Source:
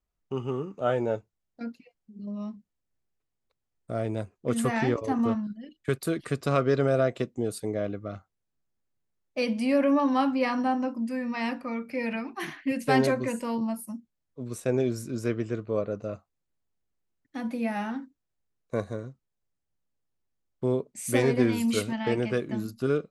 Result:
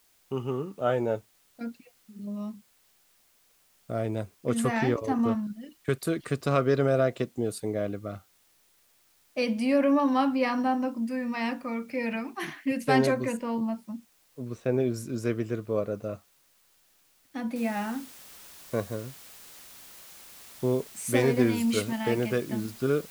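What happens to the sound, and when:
13.37–14.94 s: distance through air 170 m
17.56 s: noise floor step -65 dB -49 dB

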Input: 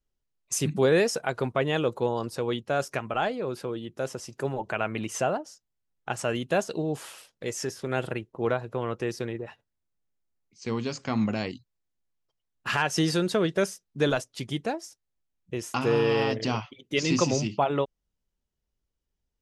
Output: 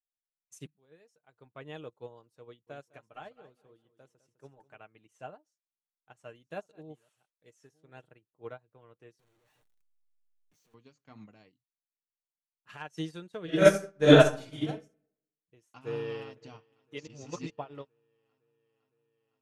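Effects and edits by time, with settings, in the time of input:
0.67–1.61 s: fade in quadratic, from -13.5 dB
2.46–4.78 s: feedback delay 206 ms, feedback 37%, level -9.5 dB
5.31–8.04 s: chunks repeated in reverse 677 ms, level -12.5 dB
9.19–10.74 s: one-bit comparator
11.51–12.69 s: treble shelf 4.7 kHz -8.5 dB
13.44–14.67 s: reverb throw, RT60 0.85 s, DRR -9.5 dB
15.70–16.35 s: echo throw 510 ms, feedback 80%, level -13 dB
17.07–17.50 s: reverse
whole clip: band-stop 5 kHz, Q 8.8; comb 6.6 ms, depth 35%; upward expansion 2.5:1, over -34 dBFS

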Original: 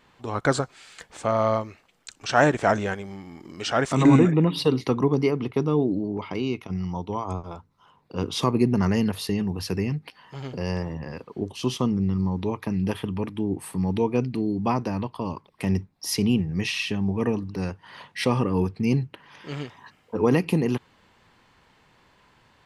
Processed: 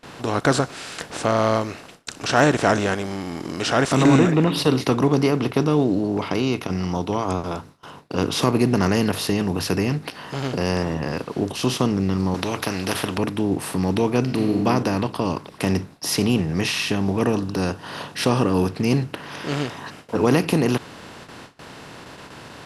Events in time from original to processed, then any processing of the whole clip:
12.34–13.18 s: spectrum-flattening compressor 2:1
14.21–14.66 s: reverb throw, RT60 0.97 s, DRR 5 dB
17.22–18.68 s: peaking EQ 2.1 kHz -10 dB 0.32 oct
whole clip: spectral levelling over time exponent 0.6; treble shelf 3.4 kHz +4 dB; gate with hold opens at -29 dBFS; trim -1 dB

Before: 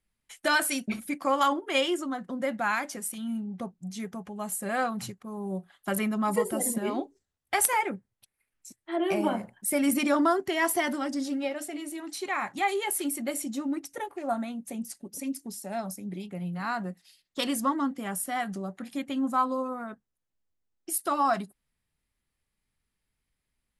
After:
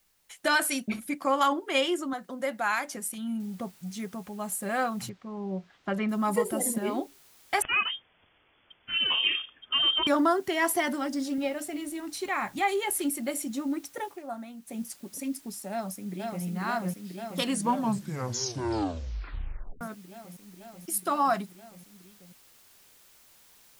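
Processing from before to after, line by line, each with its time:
2.13–2.87 s: tone controls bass -11 dB, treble +4 dB
3.40 s: noise floor step -70 dB -58 dB
5.09–6.09 s: distance through air 180 m
7.62–10.07 s: frequency inversion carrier 3.4 kHz
11.38–13.10 s: bass shelf 140 Hz +10 dB
14.10–14.77 s: dip -8 dB, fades 0.12 s
15.70–16.44 s: echo throw 490 ms, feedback 85%, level -3 dB
17.40 s: tape stop 2.41 s

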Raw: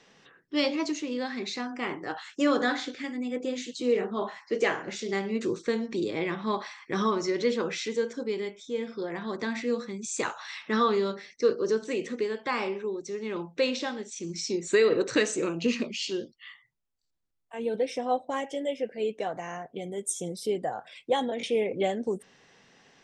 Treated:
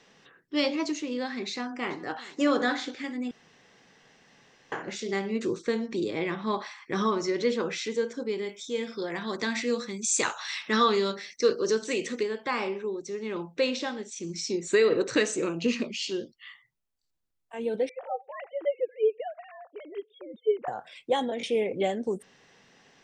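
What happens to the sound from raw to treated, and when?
1.50–2.22 s: echo throw 400 ms, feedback 55%, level -18 dB
3.31–4.72 s: room tone
8.49–12.23 s: treble shelf 2.2 kHz +9.5 dB
17.89–20.68 s: formants replaced by sine waves

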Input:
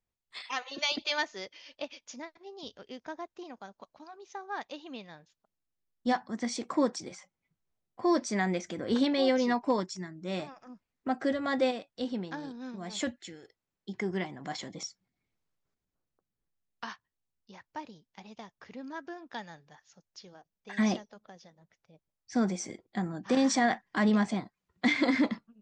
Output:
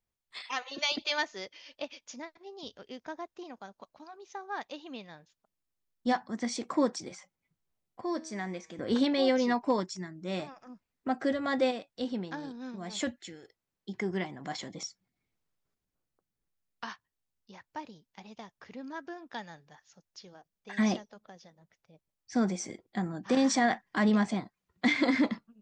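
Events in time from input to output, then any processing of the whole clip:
8.01–8.79 s: feedback comb 160 Hz, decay 0.93 s

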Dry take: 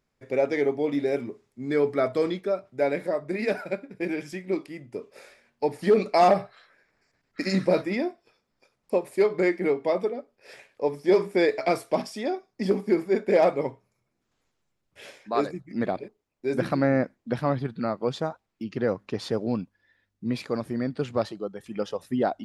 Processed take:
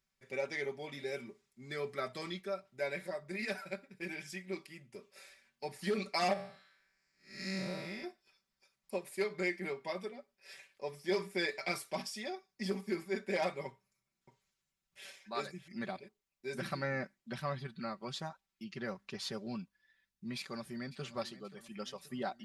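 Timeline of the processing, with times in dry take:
6.33–8.04 s: spectral blur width 213 ms
13.67–15.68 s: delay 603 ms -11.5 dB
20.38–21.02 s: echo throw 530 ms, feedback 60%, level -15.5 dB
whole clip: amplifier tone stack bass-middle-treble 5-5-5; comb 5.2 ms, depth 72%; trim +2.5 dB

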